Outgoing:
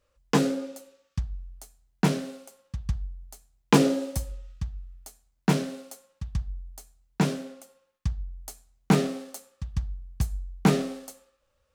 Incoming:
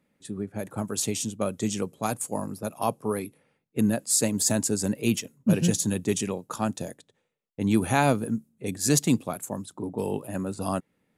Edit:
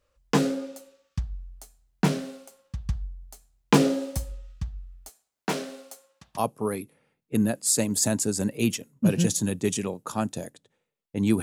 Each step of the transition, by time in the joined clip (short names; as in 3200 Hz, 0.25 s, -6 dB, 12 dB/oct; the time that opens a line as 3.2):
outgoing
5.09–6.4 HPF 340 Hz 12 dB/oct
6.37 switch to incoming from 2.81 s, crossfade 0.06 s